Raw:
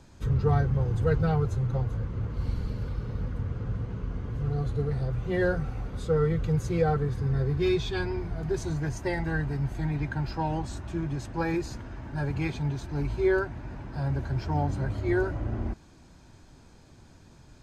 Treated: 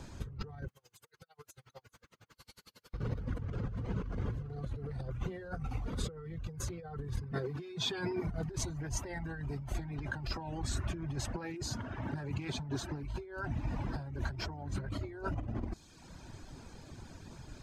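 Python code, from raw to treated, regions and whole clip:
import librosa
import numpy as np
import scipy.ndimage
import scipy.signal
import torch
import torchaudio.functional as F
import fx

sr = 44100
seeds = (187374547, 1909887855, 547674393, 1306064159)

y = fx.chain(x, sr, fx.differentiator(),
    fx.over_compress(threshold_db=-54.0, ratio=-0.5),
    fx.tremolo_db(hz=11.0, depth_db=29), at=(0.68, 2.94))
y = fx.chain(y, sr, fx.highpass(hz=140.0, slope=24),
    fx.quant_float(bits=8), at=(7.32, 8.27))
y = fx.chain(y, sr, fx.highpass(hz=99.0, slope=12),
    fx.doppler_dist(depth_ms=0.12), at=(11.36, 13.03))
y = fx.dereverb_blind(y, sr, rt60_s=0.8)
y = fx.over_compress(y, sr, threshold_db=-38.0, ratio=-1.0)
y = y * librosa.db_to_amplitude(-1.0)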